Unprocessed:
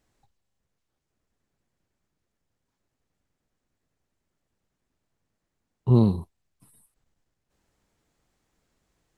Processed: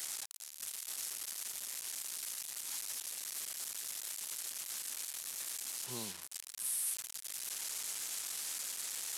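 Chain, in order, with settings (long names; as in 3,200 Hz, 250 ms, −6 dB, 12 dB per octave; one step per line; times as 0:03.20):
linear delta modulator 64 kbit/s, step −30 dBFS
first difference
level +1 dB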